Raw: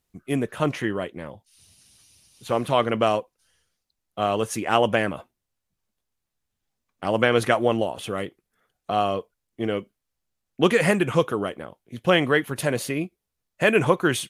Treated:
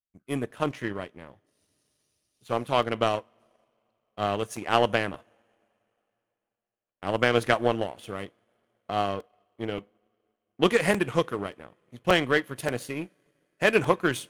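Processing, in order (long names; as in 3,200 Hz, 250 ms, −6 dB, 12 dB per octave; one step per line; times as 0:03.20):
coupled-rooms reverb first 0.27 s, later 4.5 s, from −22 dB, DRR 14.5 dB
power curve on the samples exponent 1.4
regular buffer underruns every 0.58 s, samples 128, repeat, from 0:00.50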